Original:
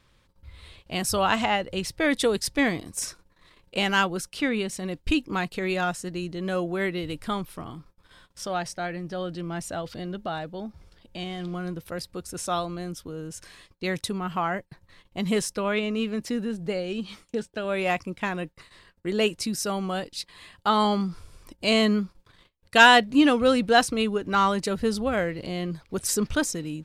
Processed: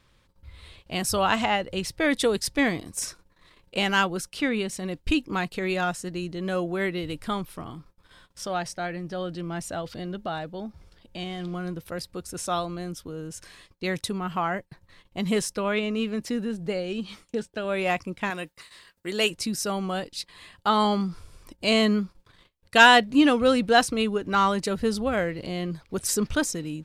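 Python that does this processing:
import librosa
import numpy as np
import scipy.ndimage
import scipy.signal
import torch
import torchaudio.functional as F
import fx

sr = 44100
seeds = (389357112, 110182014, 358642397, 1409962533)

y = fx.tilt_eq(x, sr, slope=2.5, at=(18.3, 19.3))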